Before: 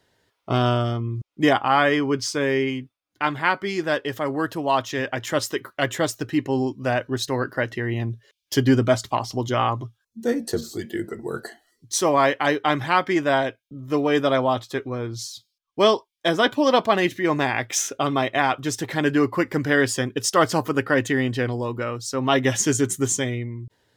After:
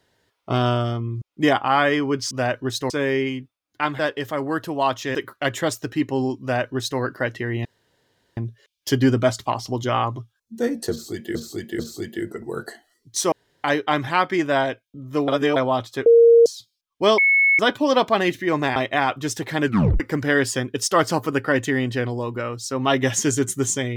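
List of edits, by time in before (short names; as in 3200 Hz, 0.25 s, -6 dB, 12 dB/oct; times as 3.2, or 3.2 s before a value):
3.4–3.87 cut
5.03–5.52 cut
6.78–7.37 copy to 2.31
8.02 insert room tone 0.72 s
10.56–11 loop, 3 plays
12.09–12.41 room tone
14.05–14.33 reverse
14.83–15.23 bleep 465 Hz -8 dBFS
15.95–16.36 bleep 2200 Hz -13 dBFS
17.53–18.18 cut
19.08 tape stop 0.34 s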